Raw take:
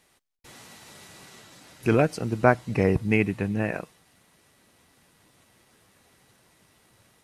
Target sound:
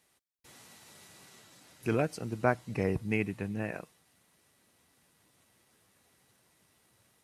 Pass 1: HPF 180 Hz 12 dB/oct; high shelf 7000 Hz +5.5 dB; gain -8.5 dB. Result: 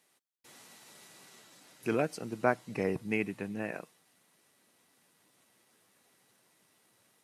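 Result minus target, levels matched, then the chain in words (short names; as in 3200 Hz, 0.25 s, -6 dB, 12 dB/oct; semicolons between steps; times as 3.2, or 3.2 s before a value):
125 Hz band -6.0 dB
HPF 49 Hz 12 dB/oct; high shelf 7000 Hz +5.5 dB; gain -8.5 dB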